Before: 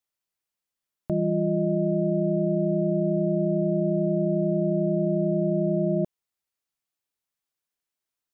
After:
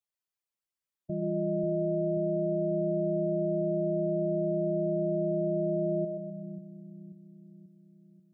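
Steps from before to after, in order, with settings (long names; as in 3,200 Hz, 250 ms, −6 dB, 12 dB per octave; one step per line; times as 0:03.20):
expanding power law on the bin magnitudes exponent 1.9
echo with a time of its own for lows and highs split 300 Hz, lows 537 ms, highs 127 ms, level −4 dB
level −8 dB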